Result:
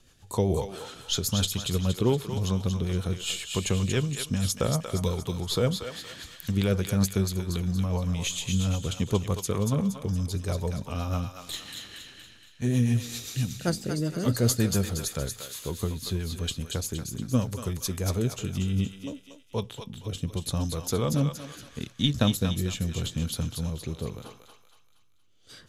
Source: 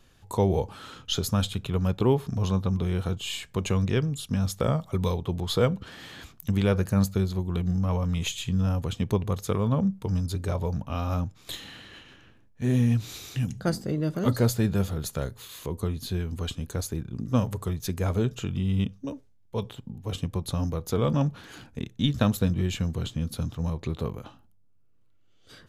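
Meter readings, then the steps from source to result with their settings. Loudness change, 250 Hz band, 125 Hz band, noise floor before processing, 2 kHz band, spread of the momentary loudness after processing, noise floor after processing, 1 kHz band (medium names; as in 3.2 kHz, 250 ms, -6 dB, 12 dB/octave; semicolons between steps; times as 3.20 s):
-0.5 dB, -1.5 dB, -1.5 dB, -58 dBFS, 0.0 dB, 12 LU, -57 dBFS, -3.0 dB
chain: peaking EQ 8 kHz +8 dB 2.1 oct; rotary cabinet horn 7.5 Hz, later 0.8 Hz, at 17.88 s; on a send: thinning echo 234 ms, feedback 50%, high-pass 990 Hz, level -4.5 dB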